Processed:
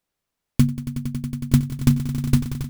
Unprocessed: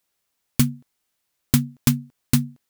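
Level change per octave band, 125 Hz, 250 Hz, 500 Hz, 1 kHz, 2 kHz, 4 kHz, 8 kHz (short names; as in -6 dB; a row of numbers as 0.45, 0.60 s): +4.5, +2.0, +1.5, -1.5, -3.5, -5.5, -7.5 dB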